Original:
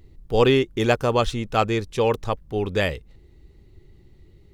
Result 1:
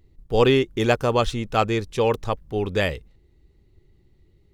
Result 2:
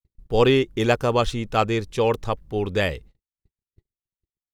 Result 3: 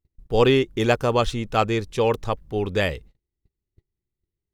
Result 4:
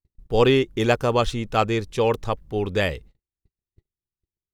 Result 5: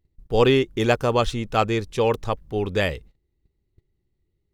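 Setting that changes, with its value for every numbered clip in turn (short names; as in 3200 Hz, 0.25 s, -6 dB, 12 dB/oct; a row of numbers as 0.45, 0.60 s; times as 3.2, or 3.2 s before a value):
gate, range: -7, -60, -34, -46, -22 dB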